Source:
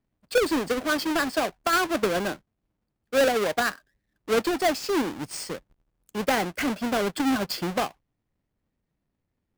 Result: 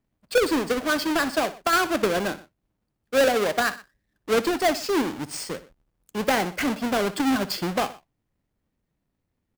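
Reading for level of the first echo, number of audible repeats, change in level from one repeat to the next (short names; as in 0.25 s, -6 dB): -16.0 dB, 2, -5.0 dB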